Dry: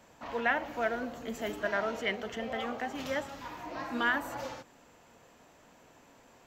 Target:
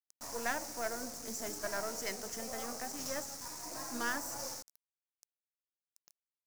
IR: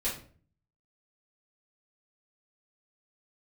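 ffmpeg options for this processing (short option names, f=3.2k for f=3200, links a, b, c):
-af "aeval=exprs='if(lt(val(0),0),0.447*val(0),val(0))':c=same,acrusher=bits=7:mix=0:aa=0.000001,highshelf=f=4.3k:t=q:w=3:g=10,volume=-4dB"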